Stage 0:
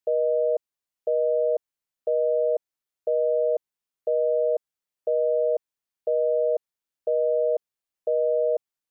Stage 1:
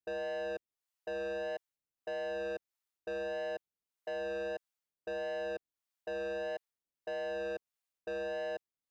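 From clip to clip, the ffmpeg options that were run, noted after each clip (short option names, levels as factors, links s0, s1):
-filter_complex "[0:a]acrossover=split=560[s0][s1];[s0]aeval=exprs='val(0)*(1-0.7/2+0.7/2*cos(2*PI*1.6*n/s))':c=same[s2];[s1]aeval=exprs='val(0)*(1-0.7/2-0.7/2*cos(2*PI*1.6*n/s))':c=same[s3];[s2][s3]amix=inputs=2:normalize=0,asoftclip=type=tanh:threshold=0.0188,volume=0.891"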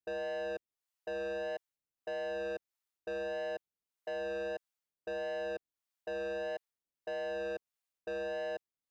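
-af anull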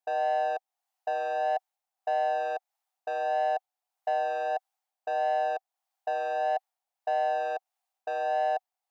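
-af "highpass=f=760:t=q:w=9.5,volume=1.33"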